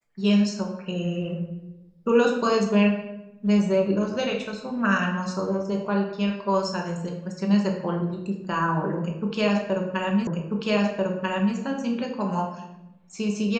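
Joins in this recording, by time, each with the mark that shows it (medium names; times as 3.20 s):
10.27 s: repeat of the last 1.29 s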